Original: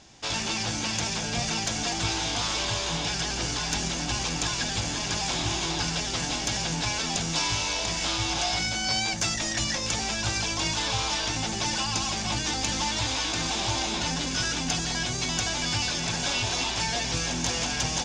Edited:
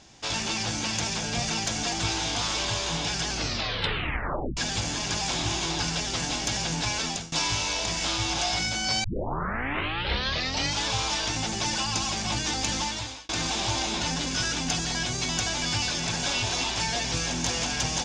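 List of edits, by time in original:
3.31 s: tape stop 1.26 s
7.06–7.32 s: fade out, to -22.5 dB
9.04 s: tape start 1.82 s
12.76–13.29 s: fade out

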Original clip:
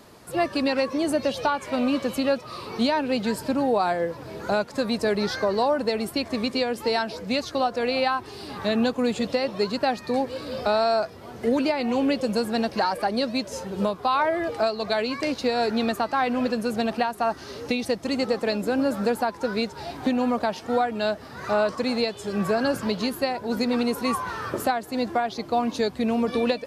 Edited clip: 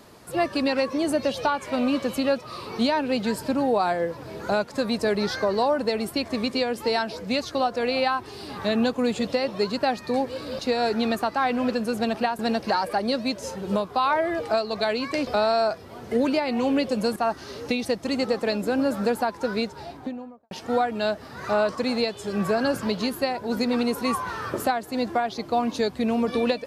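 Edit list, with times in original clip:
10.59–12.48 s: swap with 15.36–17.16 s
19.51–20.51 s: studio fade out

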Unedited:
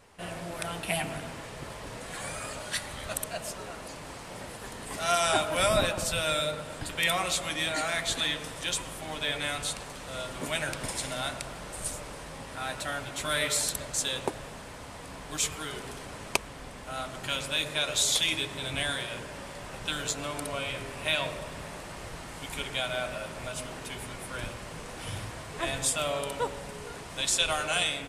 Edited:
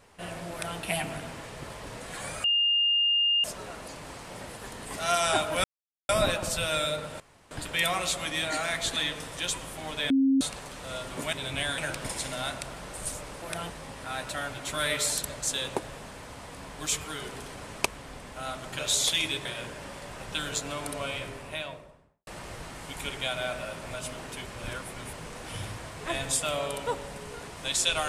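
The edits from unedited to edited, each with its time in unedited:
0.51–0.79 s: copy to 12.21 s
2.44–3.44 s: bleep 2.82 kHz -21 dBFS
5.64 s: insert silence 0.45 s
6.75 s: insert room tone 0.31 s
9.34–9.65 s: bleep 269 Hz -19 dBFS
17.30–17.87 s: delete
18.53–18.98 s: move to 10.57 s
20.59–21.80 s: studio fade out
23.99–24.66 s: reverse

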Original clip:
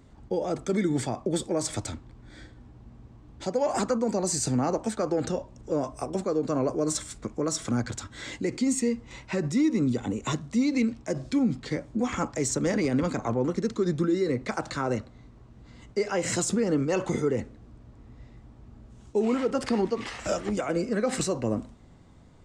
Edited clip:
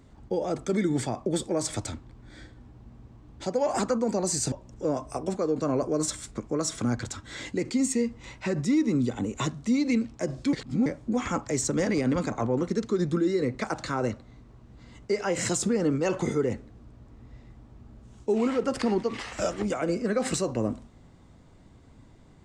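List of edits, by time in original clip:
4.52–5.39 s: delete
11.40–11.73 s: reverse

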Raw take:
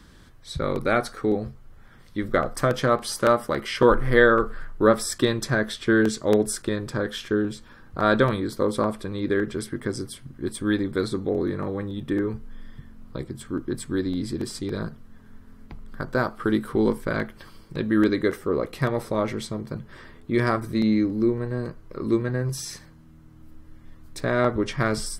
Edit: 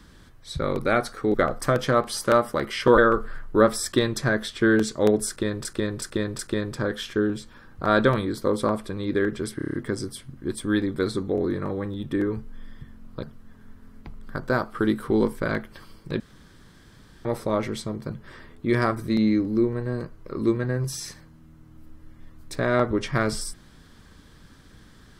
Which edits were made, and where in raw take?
1.34–2.29 s: delete
3.93–4.24 s: delete
6.54–6.91 s: loop, 4 plays
9.71 s: stutter 0.03 s, 7 plays
13.20–14.88 s: delete
17.85–18.90 s: room tone

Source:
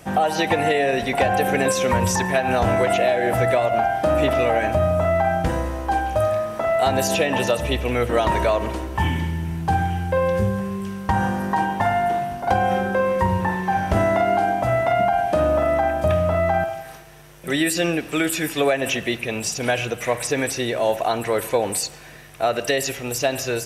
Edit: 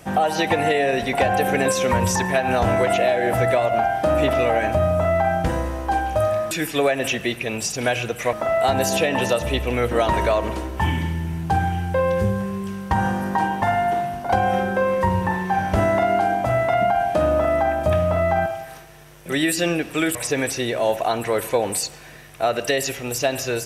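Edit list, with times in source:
18.33–20.15 s: move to 6.51 s

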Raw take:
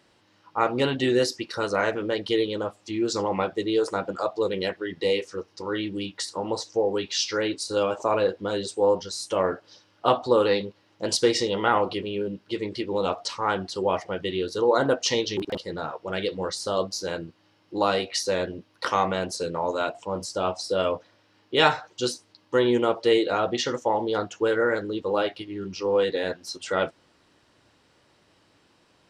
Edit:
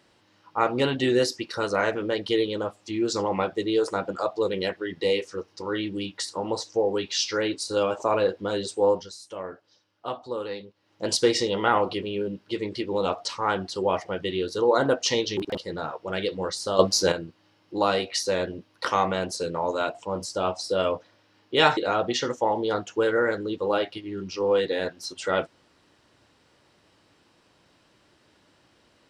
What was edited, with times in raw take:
8.88–11.06 s: dip -11.5 dB, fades 0.30 s
16.79–17.12 s: gain +9 dB
21.77–23.21 s: delete

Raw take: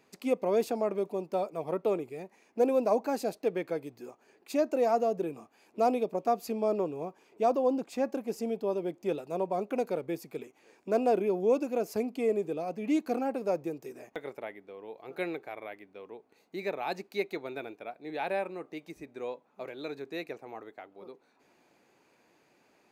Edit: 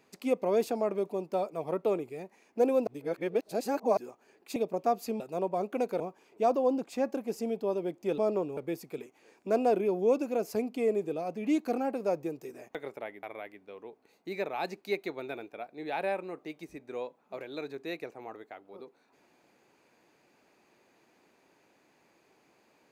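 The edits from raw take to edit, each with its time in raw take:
2.87–3.97 s: reverse
4.56–5.97 s: delete
6.61–7.00 s: swap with 9.18–9.98 s
14.64–15.50 s: delete

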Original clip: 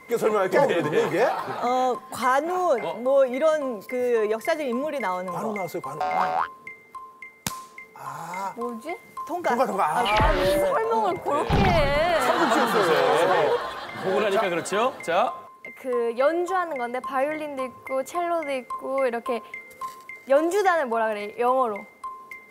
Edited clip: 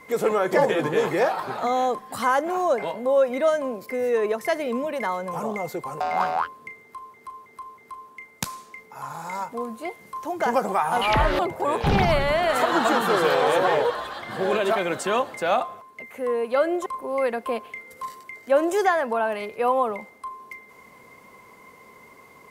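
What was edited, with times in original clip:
6.82–7.14 s: loop, 4 plays
10.43–11.05 s: delete
16.52–18.66 s: delete

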